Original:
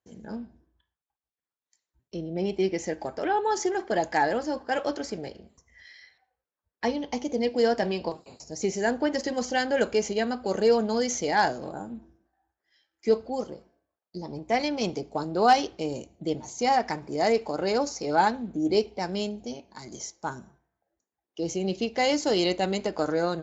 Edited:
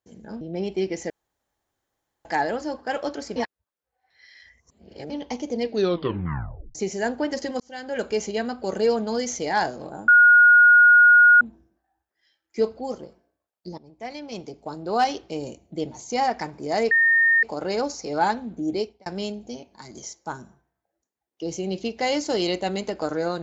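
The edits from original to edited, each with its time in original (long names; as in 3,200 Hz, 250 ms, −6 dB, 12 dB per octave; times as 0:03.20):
0:00.41–0:02.23: remove
0:02.92–0:04.07: fill with room tone
0:05.18–0:06.92: reverse
0:07.47: tape stop 1.10 s
0:09.42–0:09.99: fade in linear
0:11.90: insert tone 1,440 Hz −9.5 dBFS 1.33 s
0:14.27–0:15.93: fade in, from −15.5 dB
0:17.40: insert tone 1,830 Hz −14.5 dBFS 0.52 s
0:18.64–0:19.03: fade out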